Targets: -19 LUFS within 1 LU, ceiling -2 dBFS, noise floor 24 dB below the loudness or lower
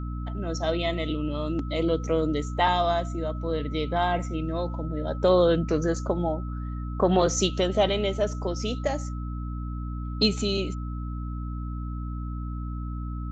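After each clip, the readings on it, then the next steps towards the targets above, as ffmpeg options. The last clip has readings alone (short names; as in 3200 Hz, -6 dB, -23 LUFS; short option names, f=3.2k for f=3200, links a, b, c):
hum 60 Hz; harmonics up to 300 Hz; hum level -30 dBFS; steady tone 1300 Hz; tone level -44 dBFS; loudness -27.5 LUFS; peak -9.0 dBFS; loudness target -19.0 LUFS
-> -af "bandreject=f=60:t=h:w=4,bandreject=f=120:t=h:w=4,bandreject=f=180:t=h:w=4,bandreject=f=240:t=h:w=4,bandreject=f=300:t=h:w=4"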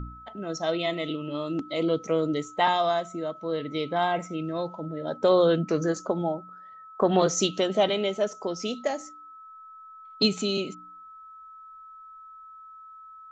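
hum none; steady tone 1300 Hz; tone level -44 dBFS
-> -af "bandreject=f=1.3k:w=30"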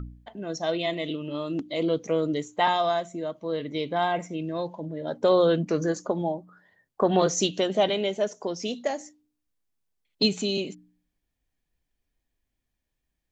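steady tone none; loudness -27.0 LUFS; peak -9.0 dBFS; loudness target -19.0 LUFS
-> -af "volume=8dB,alimiter=limit=-2dB:level=0:latency=1"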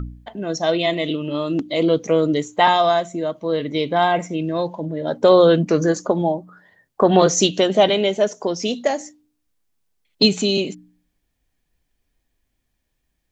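loudness -19.0 LUFS; peak -2.0 dBFS; noise floor -73 dBFS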